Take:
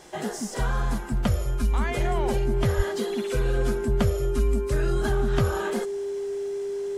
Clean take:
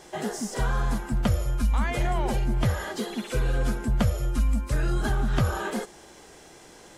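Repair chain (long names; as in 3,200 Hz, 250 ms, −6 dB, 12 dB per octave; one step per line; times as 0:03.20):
notch filter 400 Hz, Q 30
high-pass at the plosives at 0:02.76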